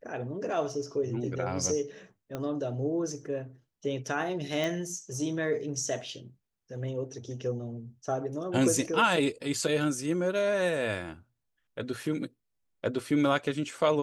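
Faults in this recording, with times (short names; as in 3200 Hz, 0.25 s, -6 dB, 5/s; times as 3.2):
2.35 pop -21 dBFS
4.64 pop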